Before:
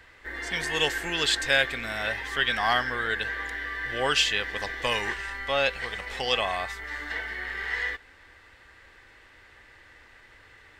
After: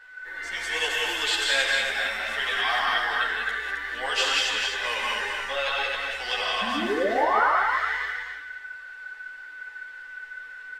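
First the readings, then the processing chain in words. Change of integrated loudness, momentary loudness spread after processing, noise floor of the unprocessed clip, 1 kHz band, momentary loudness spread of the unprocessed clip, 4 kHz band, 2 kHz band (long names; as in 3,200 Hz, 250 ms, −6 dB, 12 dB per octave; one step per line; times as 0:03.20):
+2.0 dB, 17 LU, −54 dBFS, +5.5 dB, 10 LU, +2.0 dB, +2.5 dB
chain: sound drawn into the spectrogram rise, 0:06.61–0:07.47, 200–1,600 Hz −21 dBFS
low-shelf EQ 300 Hz −8 dB
on a send: repeating echo 264 ms, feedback 25%, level −4.5 dB
on the sum: steady tone 1,500 Hz −41 dBFS
parametric band 110 Hz −12.5 dB 2.4 octaves
reverb whose tail is shaped and stops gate 220 ms rising, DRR −1.5 dB
string-ensemble chorus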